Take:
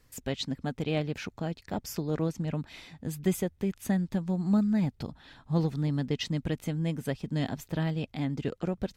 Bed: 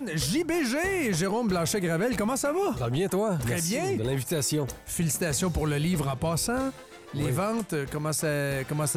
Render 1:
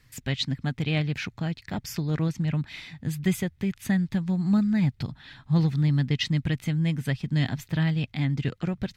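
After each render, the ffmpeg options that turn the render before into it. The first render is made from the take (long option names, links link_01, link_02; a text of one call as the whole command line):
ffmpeg -i in.wav -af "equalizer=frequency=125:width_type=o:width=1:gain=10,equalizer=frequency=500:width_type=o:width=1:gain=-5,equalizer=frequency=2000:width_type=o:width=1:gain=8,equalizer=frequency=4000:width_type=o:width=1:gain=5" out.wav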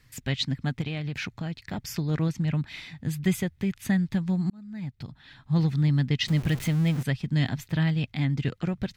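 ffmpeg -i in.wav -filter_complex "[0:a]asettb=1/sr,asplit=3[link_01][link_02][link_03];[link_01]atrim=end=0.814[link_04];[link_02]atrim=start=0.81:end=1.81,asetpts=PTS-STARTPTS,afade=type=in:duration=0.004:curve=qsin,afade=type=out:start_time=0.996:duration=0.004:curve=qsin,acompressor=threshold=-27dB:ratio=6:attack=3.2:release=140:knee=1:detection=peak[link_05];[link_03]atrim=start=1.806[link_06];[link_04][link_05]acrossfade=duration=0.004:curve1=hsin:curve2=qsin[link_07];[link_07][link_06]acrossfade=duration=0.004:curve1=qsin:curve2=hsin,asettb=1/sr,asplit=3[link_08][link_09][link_10];[link_08]atrim=end=6.284[link_11];[link_09]atrim=start=6.28:end=7.03,asetpts=PTS-STARTPTS,afade=type=in:duration=0.004:curve=qsin,afade=type=out:start_time=0.746:duration=0.004:curve=qsin,aeval=exprs='val(0)+0.5*0.0237*sgn(val(0))':channel_layout=same[link_12];[link_10]atrim=start=7.026[link_13];[link_11][link_12]acrossfade=duration=0.004:curve1=hsin:curve2=qsin[link_14];[link_14][link_13]acrossfade=duration=0.004:curve1=qsin:curve2=hsin,asplit=2[link_15][link_16];[link_15]atrim=end=4.5,asetpts=PTS-STARTPTS,afade=type=out:start_time=4.496:duration=0.004:curve=hsin[link_17];[link_16]atrim=start=4.5,asetpts=PTS-STARTPTS,afade=type=in:duration=1.26[link_18];[link_17][link_18]concat=n=2:v=0:a=1" out.wav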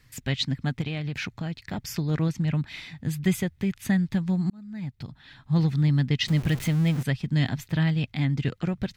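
ffmpeg -i in.wav -af "volume=1dB" out.wav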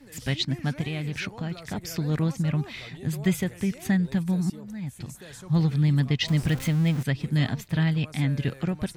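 ffmpeg -i in.wav -i bed.wav -filter_complex "[1:a]volume=-17.5dB[link_01];[0:a][link_01]amix=inputs=2:normalize=0" out.wav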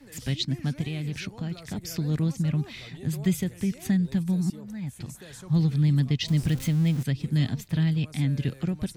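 ffmpeg -i in.wav -filter_complex "[0:a]acrossover=split=400|3000[link_01][link_02][link_03];[link_02]acompressor=threshold=-49dB:ratio=2[link_04];[link_01][link_04][link_03]amix=inputs=3:normalize=0" out.wav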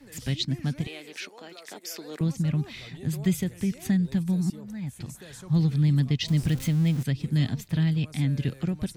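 ffmpeg -i in.wav -filter_complex "[0:a]asettb=1/sr,asplit=3[link_01][link_02][link_03];[link_01]atrim=end=0.874[link_04];[link_02]atrim=start=0.87:end=2.21,asetpts=PTS-STARTPTS,afade=type=in:duration=0.004:curve=qsin,afade=type=out:start_time=1.336:duration=0.004:curve=qsin,highpass=frequency=360:width=0.5412,highpass=frequency=360:width=1.3066[link_05];[link_03]atrim=start=2.206[link_06];[link_04][link_05]acrossfade=duration=0.004:curve1=hsin:curve2=qsin[link_07];[link_07][link_06]acrossfade=duration=0.004:curve1=qsin:curve2=hsin" out.wav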